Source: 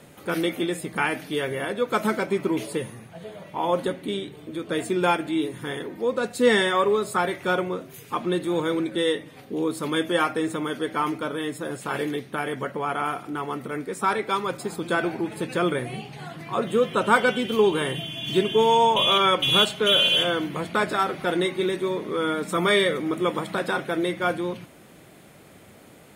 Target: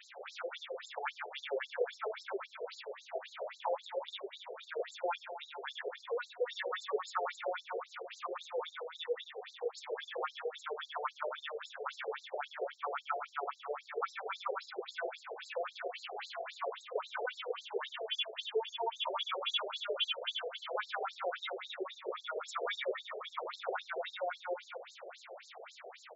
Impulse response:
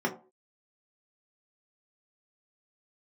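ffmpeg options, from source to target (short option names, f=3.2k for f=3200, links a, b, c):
-af "acompressor=threshold=-36dB:ratio=6,aecho=1:1:90|234|464.4|833|1423:0.631|0.398|0.251|0.158|0.1,afftfilt=real='re*between(b*sr/1024,520*pow(5500/520,0.5+0.5*sin(2*PI*3.7*pts/sr))/1.41,520*pow(5500/520,0.5+0.5*sin(2*PI*3.7*pts/sr))*1.41)':imag='im*between(b*sr/1024,520*pow(5500/520,0.5+0.5*sin(2*PI*3.7*pts/sr))/1.41,520*pow(5500/520,0.5+0.5*sin(2*PI*3.7*pts/sr))*1.41)':win_size=1024:overlap=0.75,volume=5.5dB"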